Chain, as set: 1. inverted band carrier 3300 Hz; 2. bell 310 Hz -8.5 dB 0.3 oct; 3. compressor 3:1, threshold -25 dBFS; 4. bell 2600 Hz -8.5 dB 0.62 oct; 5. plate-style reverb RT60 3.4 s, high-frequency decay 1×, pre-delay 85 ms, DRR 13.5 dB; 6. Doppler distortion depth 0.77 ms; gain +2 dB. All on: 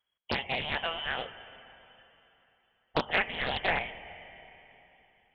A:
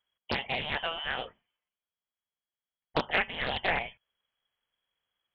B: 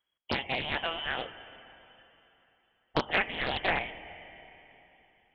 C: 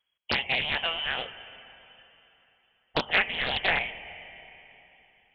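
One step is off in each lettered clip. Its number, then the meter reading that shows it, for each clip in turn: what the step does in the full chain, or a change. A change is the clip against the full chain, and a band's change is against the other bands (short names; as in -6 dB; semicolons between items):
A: 5, momentary loudness spread change -12 LU; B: 2, 250 Hz band +2.0 dB; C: 4, 4 kHz band +6.0 dB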